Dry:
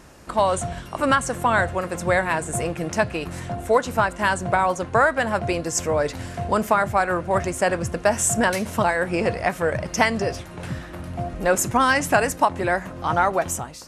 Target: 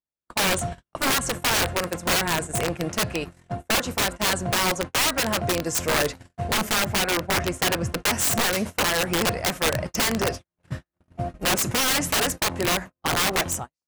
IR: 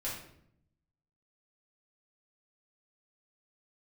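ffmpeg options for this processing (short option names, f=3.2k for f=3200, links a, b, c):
-filter_complex "[0:a]agate=range=-54dB:threshold=-28dB:ratio=16:detection=peak,asettb=1/sr,asplit=3[a][b][c];[a]atrim=end=6.744[d];[b]atrim=start=6.74:end=8.07,asetpts=PTS-STARTPTS,afade=t=in:d=0.004:c=qsin,afade=t=out:st=1.326:d=0.004:c=qsin,highshelf=f=6.9k:g=-8.5[e];[c]atrim=start=8.066[f];[d][e]acrossfade=d=0.004:c1=hsin:c2=qsin[g];[g][f]acrossfade=d=0.004:c1=qsin:c2=hsin,aeval=exprs='(mod(6.31*val(0)+1,2)-1)/6.31':c=same"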